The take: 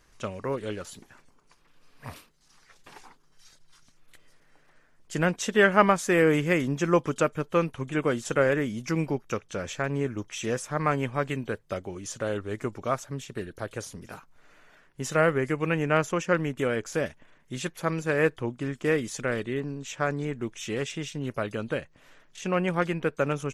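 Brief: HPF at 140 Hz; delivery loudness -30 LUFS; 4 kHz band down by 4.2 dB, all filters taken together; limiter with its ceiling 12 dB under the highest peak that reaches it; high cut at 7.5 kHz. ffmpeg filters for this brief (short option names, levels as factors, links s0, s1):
-af "highpass=140,lowpass=7500,equalizer=f=4000:t=o:g=-6,volume=1.06,alimiter=limit=0.178:level=0:latency=1"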